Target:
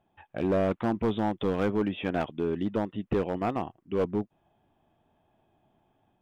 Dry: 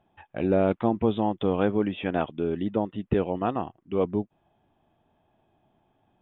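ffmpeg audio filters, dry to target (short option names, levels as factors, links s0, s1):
-af "dynaudnorm=f=160:g=3:m=1.41,asoftclip=type=hard:threshold=0.15,volume=0.631"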